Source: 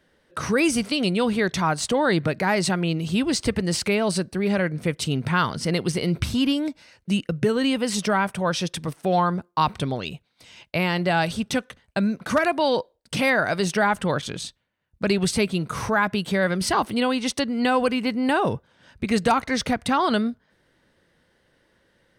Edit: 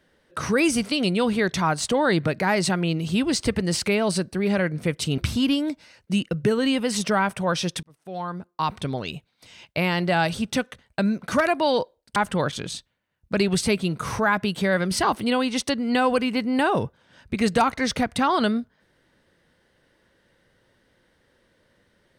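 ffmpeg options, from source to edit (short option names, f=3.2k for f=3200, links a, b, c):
-filter_complex "[0:a]asplit=4[a][b][c][d];[a]atrim=end=5.182[e];[b]atrim=start=6.158:end=8.81,asetpts=PTS-STARTPTS,afade=t=out:st=2.648:d=0.004:c=hsin[f];[c]atrim=start=8.81:end=13.142,asetpts=PTS-STARTPTS,afade=t=in:d=1.32[g];[d]atrim=start=13.858[h];[f][g]concat=n=2:v=0:a=1[i];[e][i]acrossfade=d=0.004:c1=hsin:c2=hsin[j];[j][h]acrossfade=d=0.004:c1=hsin:c2=hsin"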